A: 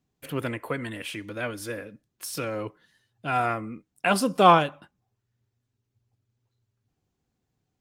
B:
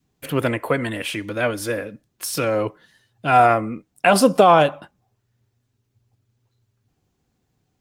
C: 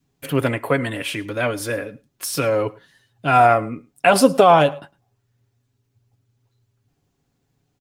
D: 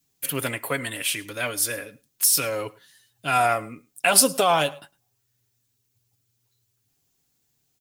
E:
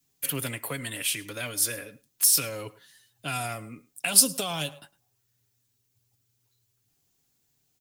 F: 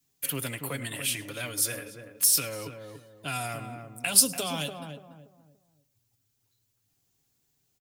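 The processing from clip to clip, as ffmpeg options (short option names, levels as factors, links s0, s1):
-af "adynamicequalizer=threshold=0.0158:dfrequency=640:dqfactor=1.6:tfrequency=640:tqfactor=1.6:attack=5:release=100:ratio=0.375:range=3.5:mode=boostabove:tftype=bell,alimiter=level_in=3.16:limit=0.891:release=50:level=0:latency=1,volume=0.794"
-af "aecho=1:1:7.2:0.37,aecho=1:1:107:0.0708"
-af "crystalizer=i=7.5:c=0,volume=0.299"
-filter_complex "[0:a]acrossover=split=250|3000[s0][s1][s2];[s1]acompressor=threshold=0.0178:ratio=4[s3];[s0][s3][s2]amix=inputs=3:normalize=0,volume=0.891"
-filter_complex "[0:a]asplit=2[s0][s1];[s1]adelay=288,lowpass=f=860:p=1,volume=0.562,asplit=2[s2][s3];[s3]adelay=288,lowpass=f=860:p=1,volume=0.36,asplit=2[s4][s5];[s5]adelay=288,lowpass=f=860:p=1,volume=0.36,asplit=2[s6][s7];[s7]adelay=288,lowpass=f=860:p=1,volume=0.36[s8];[s0][s2][s4][s6][s8]amix=inputs=5:normalize=0,volume=0.841"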